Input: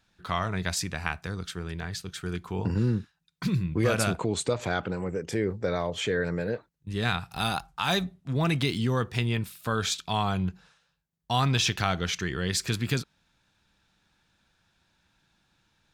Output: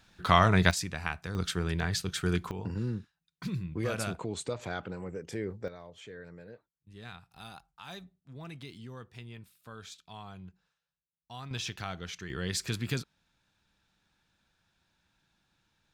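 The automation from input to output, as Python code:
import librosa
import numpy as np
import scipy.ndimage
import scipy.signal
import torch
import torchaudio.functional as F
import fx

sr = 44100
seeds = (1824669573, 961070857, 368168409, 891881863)

y = fx.gain(x, sr, db=fx.steps((0.0, 7.0), (0.71, -3.5), (1.35, 4.0), (2.51, -8.0), (5.68, -19.0), (11.51, -11.5), (12.3, -5.0)))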